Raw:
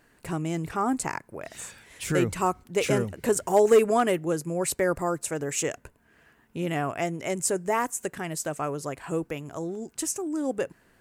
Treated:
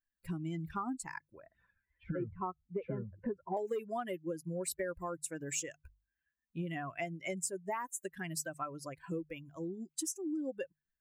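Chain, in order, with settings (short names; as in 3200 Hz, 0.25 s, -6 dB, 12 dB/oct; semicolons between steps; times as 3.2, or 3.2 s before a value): per-bin expansion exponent 2; 1.4–3.57 LPF 1400 Hz 24 dB/oct; compressor 8:1, threshold -40 dBFS, peak gain reduction 23.5 dB; notches 50/100/150 Hz; gain +5 dB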